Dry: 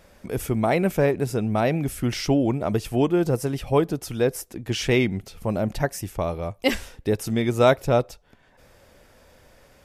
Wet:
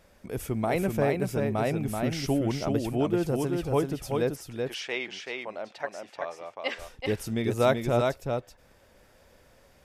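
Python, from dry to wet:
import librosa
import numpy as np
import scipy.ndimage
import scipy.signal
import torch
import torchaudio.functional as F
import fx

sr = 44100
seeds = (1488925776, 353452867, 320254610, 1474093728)

y = fx.bandpass_edges(x, sr, low_hz=630.0, high_hz=fx.line((4.35, 5400.0), (6.78, 3700.0)), at=(4.35, 6.78), fade=0.02)
y = y + 10.0 ** (-4.0 / 20.0) * np.pad(y, (int(382 * sr / 1000.0), 0))[:len(y)]
y = y * librosa.db_to_amplitude(-6.0)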